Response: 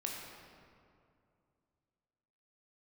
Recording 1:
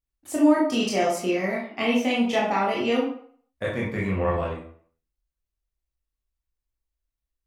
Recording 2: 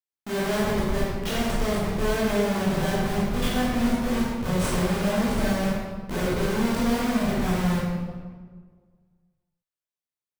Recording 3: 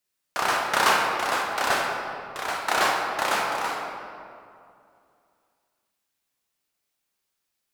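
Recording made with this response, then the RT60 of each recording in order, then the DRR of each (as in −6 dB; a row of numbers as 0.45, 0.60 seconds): 3; 0.50, 1.6, 2.5 seconds; −5.5, −9.0, −1.5 decibels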